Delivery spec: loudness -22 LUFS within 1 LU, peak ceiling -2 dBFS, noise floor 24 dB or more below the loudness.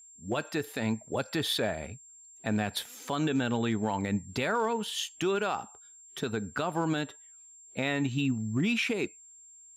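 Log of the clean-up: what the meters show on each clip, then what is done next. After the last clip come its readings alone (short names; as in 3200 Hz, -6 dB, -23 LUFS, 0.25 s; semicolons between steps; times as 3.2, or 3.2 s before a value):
clipped 0.1%; flat tops at -20.5 dBFS; steady tone 7400 Hz; tone level -51 dBFS; loudness -31.5 LUFS; peak -20.5 dBFS; loudness target -22.0 LUFS
-> clip repair -20.5 dBFS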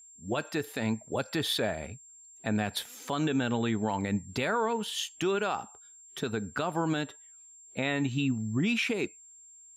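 clipped 0.0%; steady tone 7400 Hz; tone level -51 dBFS
-> notch 7400 Hz, Q 30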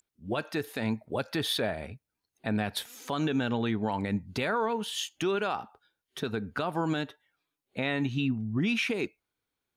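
steady tone none; loudness -31.5 LUFS; peak -19.5 dBFS; loudness target -22.0 LUFS
-> gain +9.5 dB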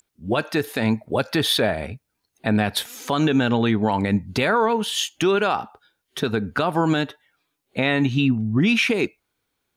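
loudness -22.0 LUFS; peak -10.0 dBFS; noise floor -77 dBFS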